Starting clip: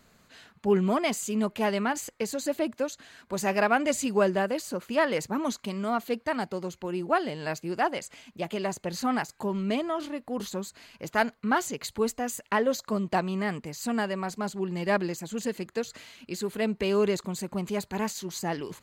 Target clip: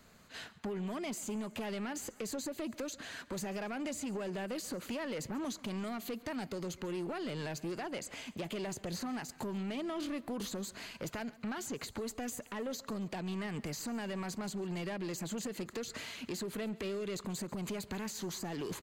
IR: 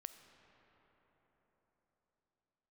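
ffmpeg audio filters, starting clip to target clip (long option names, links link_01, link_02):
-filter_complex "[0:a]agate=range=-7dB:threshold=-52dB:ratio=16:detection=peak,acompressor=threshold=-31dB:ratio=6,alimiter=level_in=4.5dB:limit=-24dB:level=0:latency=1:release=85,volume=-4.5dB,acrossover=split=470|1800[link_01][link_02][link_03];[link_01]acompressor=threshold=-41dB:ratio=4[link_04];[link_02]acompressor=threshold=-50dB:ratio=4[link_05];[link_03]acompressor=threshold=-49dB:ratio=4[link_06];[link_04][link_05][link_06]amix=inputs=3:normalize=0,asoftclip=type=tanh:threshold=-39.5dB,asplit=2[link_07][link_08];[link_08]aecho=0:1:138|276|414|552:0.0944|0.0481|0.0246|0.0125[link_09];[link_07][link_09]amix=inputs=2:normalize=0,volume=6.5dB"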